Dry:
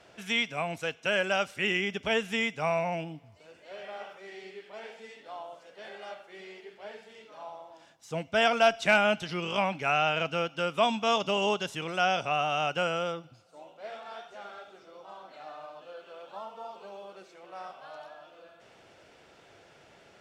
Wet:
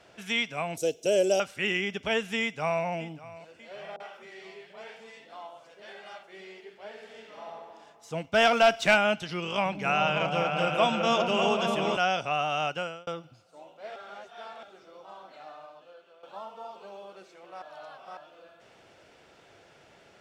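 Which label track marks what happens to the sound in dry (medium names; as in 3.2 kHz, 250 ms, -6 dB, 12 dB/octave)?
0.770000	1.400000	FFT filter 220 Hz 0 dB, 350 Hz +12 dB, 620 Hz +6 dB, 1.1 kHz -16 dB, 1.7 kHz -16 dB, 5.9 kHz +10 dB, 9.8 kHz +13 dB
2.410000	2.850000	echo throw 590 ms, feedback 60%, level -17.5 dB
3.960000	6.230000	three bands offset in time mids, highs, lows 40/260 ms, splits 170/520 Hz
6.900000	7.440000	reverb throw, RT60 2.4 s, DRR -1 dB
8.240000	8.950000	waveshaping leveller passes 1
9.460000	11.970000	delay with an opening low-pass 195 ms, low-pass from 200 Hz, each repeat up 2 oct, level 0 dB
12.660000	13.070000	fade out
13.960000	14.630000	reverse
15.290000	16.230000	fade out, to -12.5 dB
17.620000	18.170000	reverse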